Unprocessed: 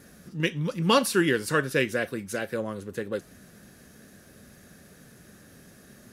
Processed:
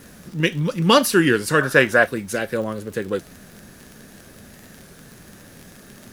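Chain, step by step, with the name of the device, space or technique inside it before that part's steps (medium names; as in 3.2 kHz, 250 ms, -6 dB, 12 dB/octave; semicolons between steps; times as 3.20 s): 1.61–2.06 s: high-order bell 1 kHz +10.5 dB; warped LP (warped record 33 1/3 rpm, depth 100 cents; crackle 37 per s -36 dBFS; pink noise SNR 31 dB); trim +6.5 dB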